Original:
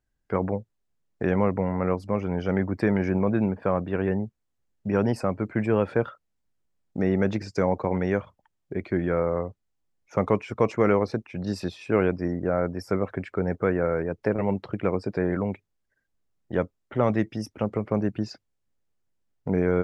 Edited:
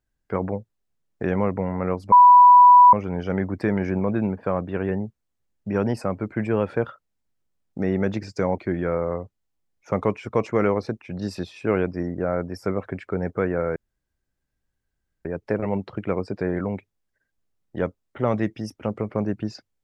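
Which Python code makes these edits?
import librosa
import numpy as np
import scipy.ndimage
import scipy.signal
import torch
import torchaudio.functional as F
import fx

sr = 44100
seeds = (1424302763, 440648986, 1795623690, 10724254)

y = fx.edit(x, sr, fx.insert_tone(at_s=2.12, length_s=0.81, hz=985.0, db=-7.0),
    fx.cut(start_s=7.77, length_s=1.06),
    fx.insert_room_tone(at_s=14.01, length_s=1.49), tone=tone)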